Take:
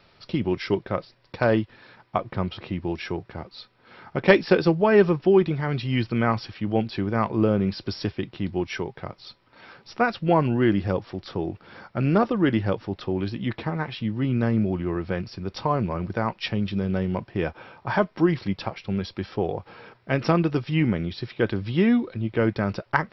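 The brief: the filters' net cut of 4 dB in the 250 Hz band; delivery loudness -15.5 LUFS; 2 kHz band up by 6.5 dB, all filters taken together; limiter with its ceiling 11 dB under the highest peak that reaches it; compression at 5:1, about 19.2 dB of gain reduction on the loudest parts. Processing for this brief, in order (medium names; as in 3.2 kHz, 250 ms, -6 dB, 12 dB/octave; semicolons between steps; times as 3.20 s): peaking EQ 250 Hz -6 dB; peaking EQ 2 kHz +8.5 dB; compression 5:1, threshold -31 dBFS; trim +21.5 dB; peak limiter -1.5 dBFS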